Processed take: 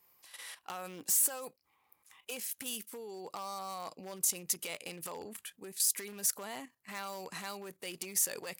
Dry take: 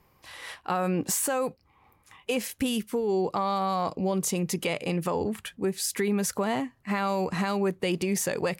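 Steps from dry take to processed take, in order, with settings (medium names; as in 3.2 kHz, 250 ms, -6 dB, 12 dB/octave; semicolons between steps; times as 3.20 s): wavefolder -20 dBFS; level held to a coarse grid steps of 11 dB; RIAA curve recording; trim -7.5 dB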